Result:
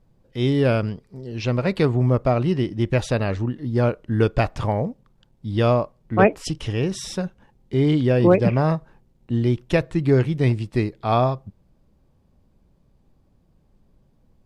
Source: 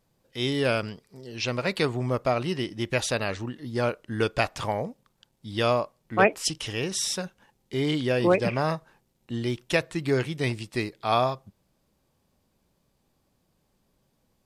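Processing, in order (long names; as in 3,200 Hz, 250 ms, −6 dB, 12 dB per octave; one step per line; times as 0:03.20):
spectral tilt −3 dB per octave
level +2 dB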